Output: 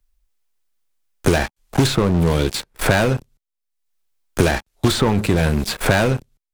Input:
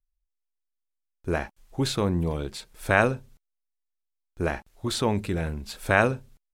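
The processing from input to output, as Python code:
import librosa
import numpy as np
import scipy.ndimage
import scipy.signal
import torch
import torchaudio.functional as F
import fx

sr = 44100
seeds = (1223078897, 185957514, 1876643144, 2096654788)

y = fx.leveller(x, sr, passes=5)
y = fx.band_squash(y, sr, depth_pct=100)
y = y * librosa.db_to_amplitude(-5.5)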